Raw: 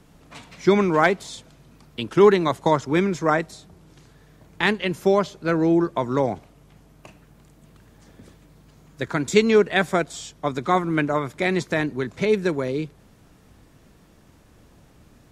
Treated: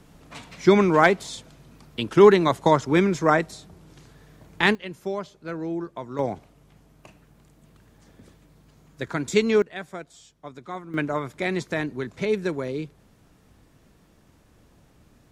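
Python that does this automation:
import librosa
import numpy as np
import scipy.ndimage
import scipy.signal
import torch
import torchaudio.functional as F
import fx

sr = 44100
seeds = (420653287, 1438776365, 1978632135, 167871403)

y = fx.gain(x, sr, db=fx.steps((0.0, 1.0), (4.75, -11.0), (6.19, -3.5), (9.62, -15.0), (10.94, -4.0)))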